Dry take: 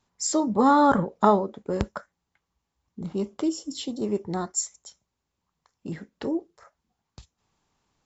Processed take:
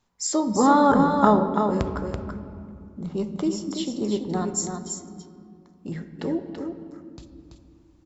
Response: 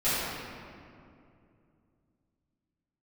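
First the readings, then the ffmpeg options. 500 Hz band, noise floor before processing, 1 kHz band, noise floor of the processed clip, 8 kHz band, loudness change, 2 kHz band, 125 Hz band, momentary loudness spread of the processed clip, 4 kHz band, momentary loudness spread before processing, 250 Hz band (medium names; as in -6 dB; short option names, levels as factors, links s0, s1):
+2.0 dB, -82 dBFS, +2.0 dB, -56 dBFS, no reading, +1.5 dB, +2.0 dB, +4.0 dB, 22 LU, +1.5 dB, 19 LU, +3.0 dB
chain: -filter_complex "[0:a]aecho=1:1:333:0.501,asplit=2[s0][s1];[1:a]atrim=start_sample=2205,lowpass=6400,lowshelf=f=170:g=11[s2];[s1][s2]afir=irnorm=-1:irlink=0,volume=0.075[s3];[s0][s3]amix=inputs=2:normalize=0"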